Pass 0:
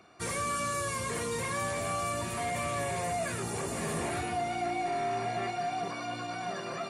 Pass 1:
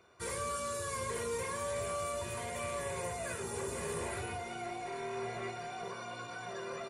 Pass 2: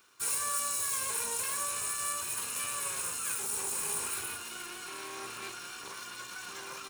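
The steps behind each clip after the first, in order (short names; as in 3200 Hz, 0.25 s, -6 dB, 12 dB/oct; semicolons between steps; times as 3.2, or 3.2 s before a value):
comb 2 ms, depth 61%; reverb RT60 0.55 s, pre-delay 4 ms, DRR 6 dB; gain -6.5 dB
minimum comb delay 0.75 ms; RIAA curve recording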